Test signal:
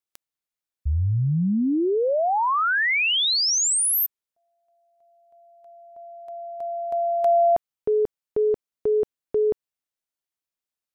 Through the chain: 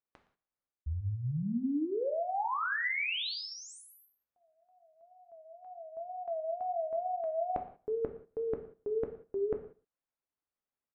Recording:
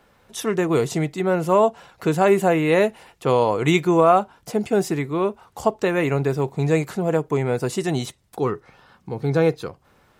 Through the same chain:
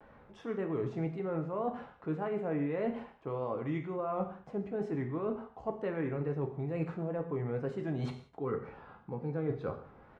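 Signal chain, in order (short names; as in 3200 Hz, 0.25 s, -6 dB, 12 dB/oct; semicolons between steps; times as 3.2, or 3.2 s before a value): LPF 1500 Hz 12 dB/oct; dynamic EQ 810 Hz, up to -4 dB, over -29 dBFS, Q 1.4; reverse; compressor 10:1, threshold -33 dBFS; reverse; wow and flutter 130 cents; echo 0.117 s -20.5 dB; non-linear reverb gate 0.21 s falling, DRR 4.5 dB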